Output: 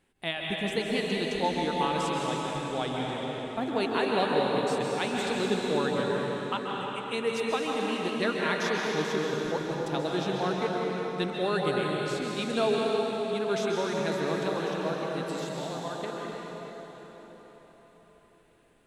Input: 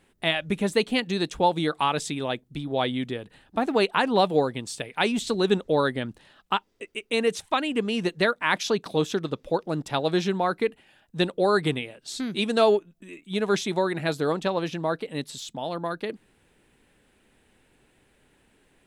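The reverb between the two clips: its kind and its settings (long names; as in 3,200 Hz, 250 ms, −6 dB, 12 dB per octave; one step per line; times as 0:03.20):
dense smooth reverb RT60 4.9 s, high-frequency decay 0.8×, pre-delay 120 ms, DRR −3 dB
level −8 dB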